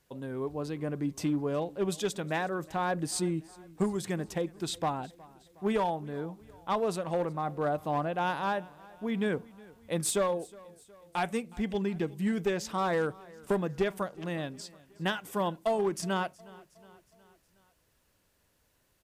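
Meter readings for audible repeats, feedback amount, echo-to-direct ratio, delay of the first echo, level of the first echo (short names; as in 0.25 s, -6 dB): 3, 55%, -21.0 dB, 0.365 s, -22.5 dB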